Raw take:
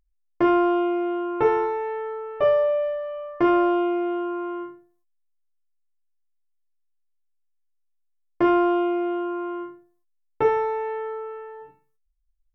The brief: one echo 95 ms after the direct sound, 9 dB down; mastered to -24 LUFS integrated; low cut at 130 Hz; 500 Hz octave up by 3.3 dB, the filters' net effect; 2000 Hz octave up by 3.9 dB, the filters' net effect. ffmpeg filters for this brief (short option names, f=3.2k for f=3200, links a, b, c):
-af "highpass=130,equalizer=f=500:t=o:g=4.5,equalizer=f=2k:t=o:g=5,aecho=1:1:95:0.355,volume=-4.5dB"